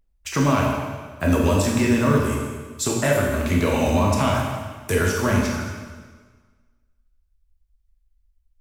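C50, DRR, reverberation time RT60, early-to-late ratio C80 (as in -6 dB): 1.0 dB, -2.5 dB, 1.4 s, 3.0 dB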